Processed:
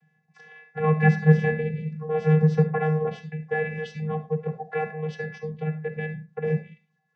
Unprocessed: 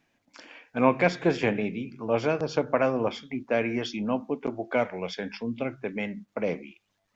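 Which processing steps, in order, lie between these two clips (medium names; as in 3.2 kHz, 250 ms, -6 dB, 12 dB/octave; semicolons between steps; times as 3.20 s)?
vocoder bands 16, square 155 Hz; small resonant body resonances 220/660/1700 Hz, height 16 dB, ringing for 55 ms; reverberation RT60 0.25 s, pre-delay 30 ms, DRR 9 dB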